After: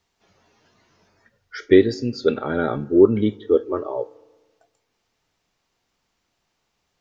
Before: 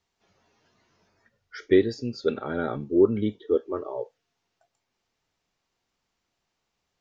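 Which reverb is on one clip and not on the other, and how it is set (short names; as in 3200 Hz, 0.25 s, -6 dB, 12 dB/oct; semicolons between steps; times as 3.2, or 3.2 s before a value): FDN reverb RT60 1.3 s, low-frequency decay 1.1×, high-frequency decay 0.35×, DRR 20 dB; gain +6 dB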